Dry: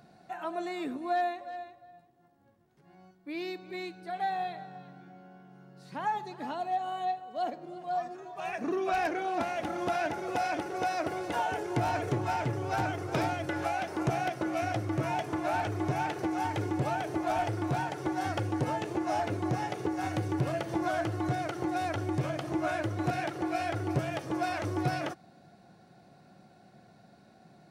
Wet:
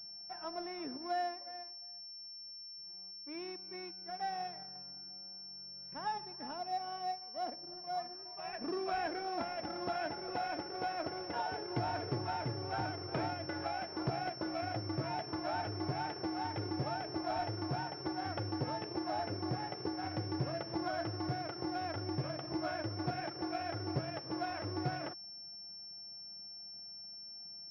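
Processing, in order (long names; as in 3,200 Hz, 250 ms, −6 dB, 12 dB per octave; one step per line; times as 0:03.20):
mu-law and A-law mismatch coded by A
switching amplifier with a slow clock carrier 5,400 Hz
level −5.5 dB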